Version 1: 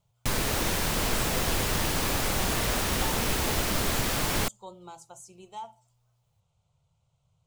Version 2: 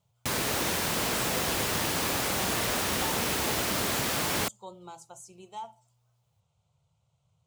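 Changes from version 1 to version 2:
background: add low shelf 120 Hz -8 dB; master: add HPF 68 Hz

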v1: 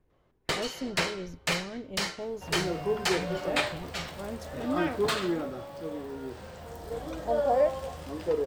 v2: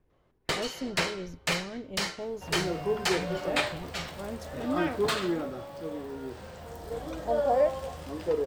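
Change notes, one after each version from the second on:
none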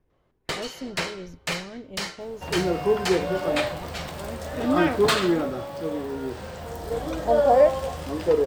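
second sound +7.5 dB

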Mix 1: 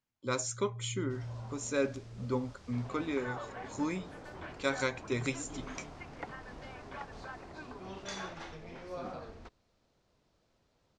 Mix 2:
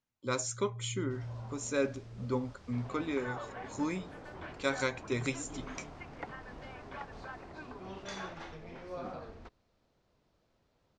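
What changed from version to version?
first sound: add high shelf 5000 Hz -7 dB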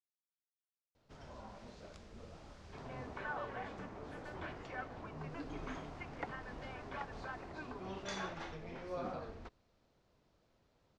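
speech: muted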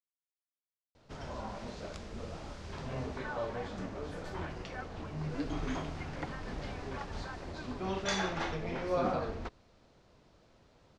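first sound +10.5 dB

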